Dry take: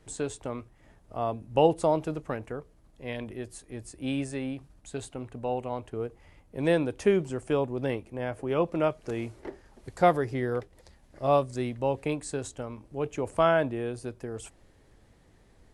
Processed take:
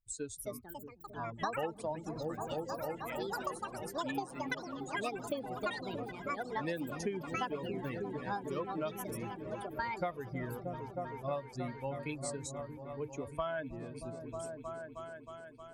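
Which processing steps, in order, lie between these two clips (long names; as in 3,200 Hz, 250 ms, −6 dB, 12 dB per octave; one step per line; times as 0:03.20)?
spectral dynamics exaggerated over time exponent 2
delay with pitch and tempo change per echo 324 ms, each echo +6 semitones, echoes 3
harmonic and percussive parts rebalanced percussive +5 dB
on a send: echo whose low-pass opens from repeat to repeat 314 ms, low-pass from 200 Hz, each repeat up 1 octave, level −6 dB
on the sum: downward compressor 6 to 1, threshold −30 dBFS, peak gain reduction 15.5 dB
level −3.5 dB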